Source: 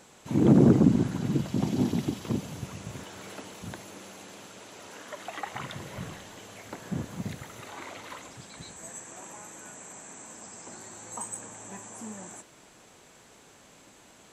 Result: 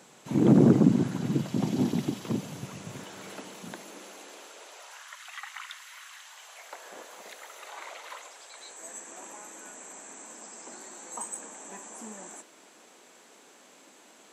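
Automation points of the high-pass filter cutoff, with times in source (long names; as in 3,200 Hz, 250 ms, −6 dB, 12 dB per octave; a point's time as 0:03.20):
high-pass filter 24 dB per octave
0:03.26 120 Hz
0:04.68 420 Hz
0:05.16 1,200 Hz
0:06.10 1,200 Hz
0:06.84 490 Hz
0:08.57 490 Hz
0:08.99 230 Hz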